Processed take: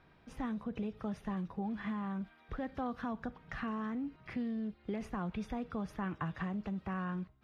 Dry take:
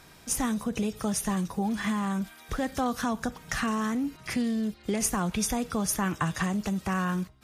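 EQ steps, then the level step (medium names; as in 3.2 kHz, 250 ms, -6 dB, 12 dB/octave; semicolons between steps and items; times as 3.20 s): distance through air 380 m; -8.5 dB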